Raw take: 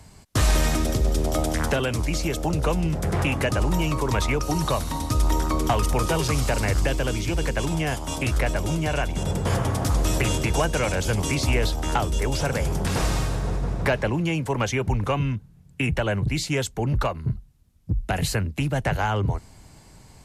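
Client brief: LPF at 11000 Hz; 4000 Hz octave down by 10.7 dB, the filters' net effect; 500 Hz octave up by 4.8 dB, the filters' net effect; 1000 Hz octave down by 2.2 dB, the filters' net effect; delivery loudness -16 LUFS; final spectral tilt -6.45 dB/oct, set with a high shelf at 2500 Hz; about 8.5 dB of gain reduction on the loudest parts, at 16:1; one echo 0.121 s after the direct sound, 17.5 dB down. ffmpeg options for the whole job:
-af "lowpass=11k,equalizer=f=500:t=o:g=7.5,equalizer=f=1k:t=o:g=-4.5,highshelf=f=2.5k:g=-7.5,equalizer=f=4k:t=o:g=-8,acompressor=threshold=-24dB:ratio=16,aecho=1:1:121:0.133,volume=14dB"

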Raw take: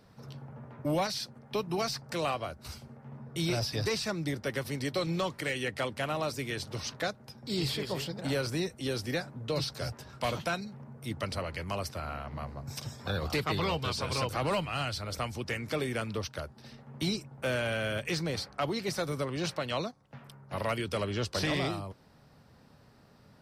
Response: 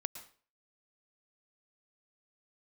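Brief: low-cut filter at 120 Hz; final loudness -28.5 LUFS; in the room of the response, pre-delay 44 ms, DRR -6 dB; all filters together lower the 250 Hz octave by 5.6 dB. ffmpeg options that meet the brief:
-filter_complex "[0:a]highpass=120,equalizer=f=250:t=o:g=-8,asplit=2[a][b];[1:a]atrim=start_sample=2205,adelay=44[c];[b][c]afir=irnorm=-1:irlink=0,volume=6.5dB[d];[a][d]amix=inputs=2:normalize=0"

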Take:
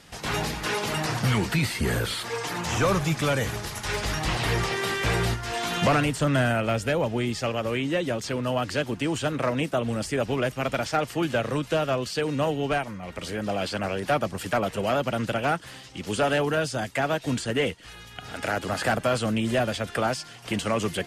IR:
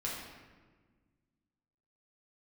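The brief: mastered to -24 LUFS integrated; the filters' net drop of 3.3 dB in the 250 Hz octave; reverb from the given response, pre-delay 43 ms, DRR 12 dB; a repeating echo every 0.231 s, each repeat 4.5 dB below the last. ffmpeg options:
-filter_complex "[0:a]equalizer=f=250:t=o:g=-4.5,aecho=1:1:231|462|693|924|1155|1386|1617|1848|2079:0.596|0.357|0.214|0.129|0.0772|0.0463|0.0278|0.0167|0.01,asplit=2[a][b];[1:a]atrim=start_sample=2205,adelay=43[c];[b][c]afir=irnorm=-1:irlink=0,volume=-15dB[d];[a][d]amix=inputs=2:normalize=0,volume=1dB"

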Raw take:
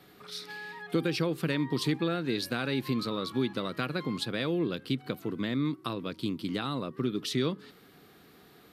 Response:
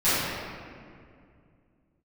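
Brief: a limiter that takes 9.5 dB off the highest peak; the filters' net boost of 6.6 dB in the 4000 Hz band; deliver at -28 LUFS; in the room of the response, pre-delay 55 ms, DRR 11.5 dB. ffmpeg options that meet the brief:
-filter_complex "[0:a]equalizer=f=4k:t=o:g=7.5,alimiter=limit=-22dB:level=0:latency=1,asplit=2[a][b];[1:a]atrim=start_sample=2205,adelay=55[c];[b][c]afir=irnorm=-1:irlink=0,volume=-29dB[d];[a][d]amix=inputs=2:normalize=0,volume=5dB"

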